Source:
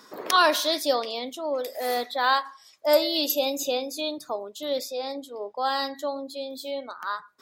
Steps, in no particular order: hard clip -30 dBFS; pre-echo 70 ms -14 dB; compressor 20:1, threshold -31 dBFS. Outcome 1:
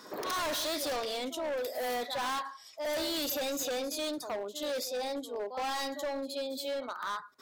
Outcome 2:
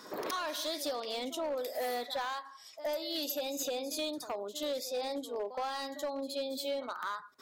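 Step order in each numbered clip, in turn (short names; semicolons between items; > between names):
pre-echo > hard clip > compressor; compressor > pre-echo > hard clip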